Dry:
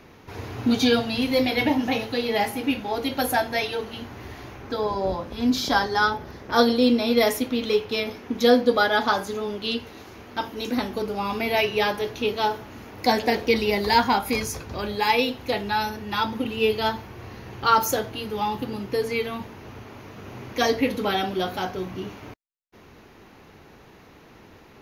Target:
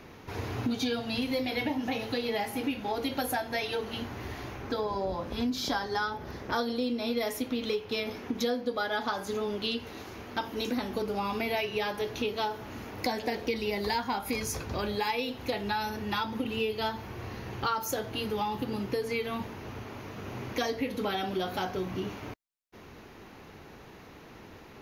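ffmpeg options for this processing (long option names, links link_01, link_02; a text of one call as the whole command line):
ffmpeg -i in.wav -af "acompressor=threshold=-28dB:ratio=6" out.wav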